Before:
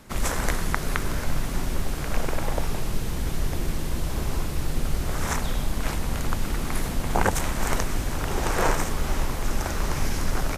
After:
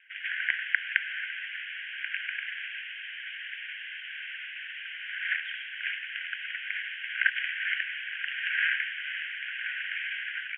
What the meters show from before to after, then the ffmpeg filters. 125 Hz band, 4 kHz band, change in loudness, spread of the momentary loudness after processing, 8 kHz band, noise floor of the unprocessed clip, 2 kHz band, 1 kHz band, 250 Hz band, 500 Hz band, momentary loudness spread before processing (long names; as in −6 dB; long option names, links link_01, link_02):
below −40 dB, 0.0 dB, −3.5 dB, 10 LU, below −40 dB, −29 dBFS, +5.5 dB, −21.0 dB, below −40 dB, below −40 dB, 6 LU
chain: -af "asuperpass=centerf=2200:order=20:qfactor=1.3,dynaudnorm=framelen=130:gausssize=5:maxgain=5dB,volume=1.5dB"